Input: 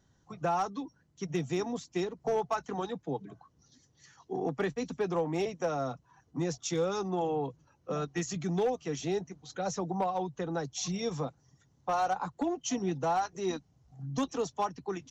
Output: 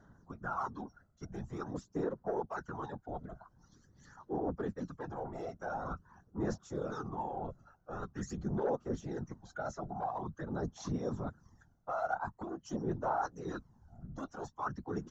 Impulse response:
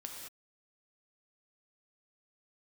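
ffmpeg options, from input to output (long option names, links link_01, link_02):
-af "afftfilt=real='hypot(re,im)*cos(2*PI*random(0))':imag='hypot(re,im)*sin(2*PI*random(1))':win_size=512:overlap=0.75,areverse,acompressor=threshold=-47dB:ratio=4,areverse,highshelf=frequency=1900:width_type=q:width=3:gain=-8,aphaser=in_gain=1:out_gain=1:delay=1.5:decay=0.54:speed=0.46:type=sinusoidal,volume=7dB"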